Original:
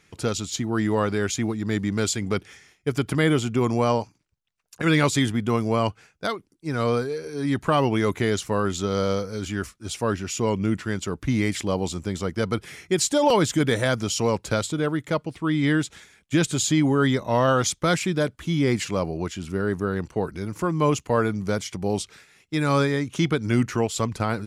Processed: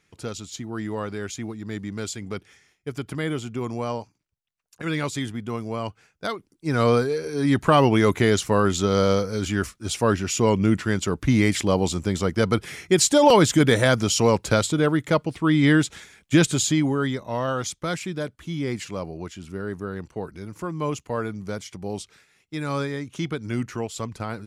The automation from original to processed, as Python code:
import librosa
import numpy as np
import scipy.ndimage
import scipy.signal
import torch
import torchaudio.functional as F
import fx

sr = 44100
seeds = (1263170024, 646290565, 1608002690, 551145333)

y = fx.gain(x, sr, db=fx.line((5.84, -7.0), (6.74, 4.0), (16.38, 4.0), (17.19, -6.0)))